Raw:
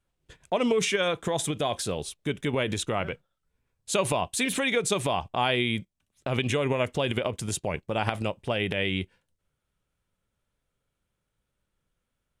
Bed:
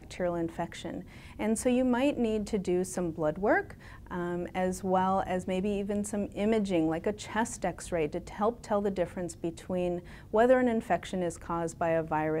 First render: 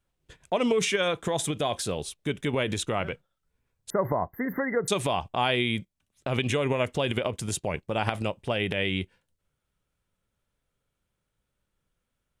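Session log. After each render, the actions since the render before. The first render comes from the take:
0:03.90–0:04.88: linear-phase brick-wall band-stop 2,100–12,000 Hz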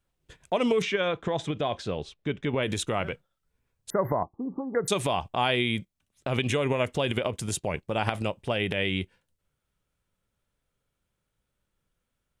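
0:00.82–0:02.63: high-frequency loss of the air 170 metres
0:04.23–0:04.75: Chebyshev low-pass with heavy ripple 1,200 Hz, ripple 9 dB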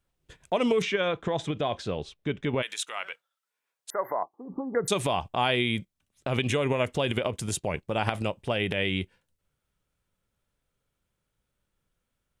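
0:02.61–0:04.48: high-pass filter 1,500 Hz → 460 Hz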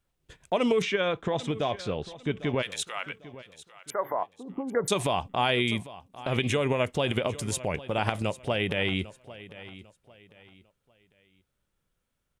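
repeating echo 799 ms, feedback 31%, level −17 dB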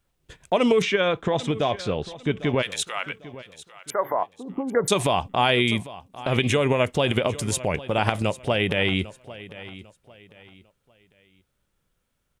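level +5 dB

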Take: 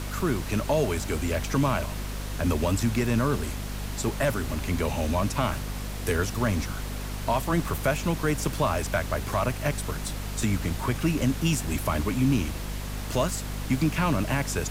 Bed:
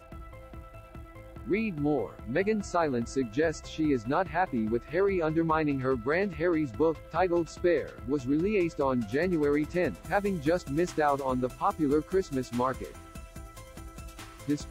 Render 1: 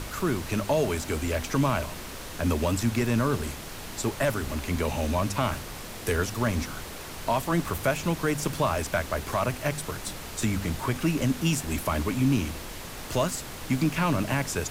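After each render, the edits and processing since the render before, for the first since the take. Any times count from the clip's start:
hum removal 50 Hz, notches 5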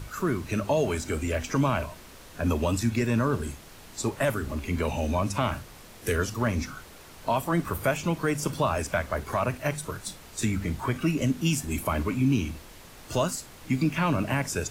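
noise reduction from a noise print 9 dB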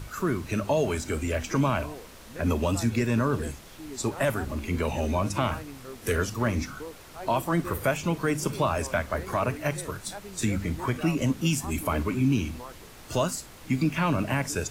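mix in bed −14.5 dB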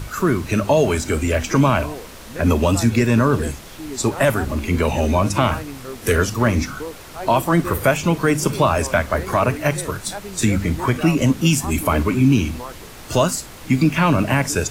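level +9 dB

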